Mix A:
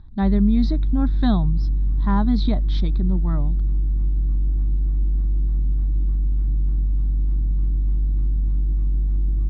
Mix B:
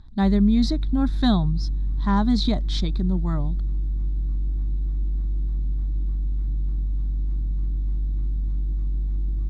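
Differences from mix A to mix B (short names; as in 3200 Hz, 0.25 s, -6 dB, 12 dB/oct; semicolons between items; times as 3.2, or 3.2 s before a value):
background -4.5 dB; master: remove air absorption 230 m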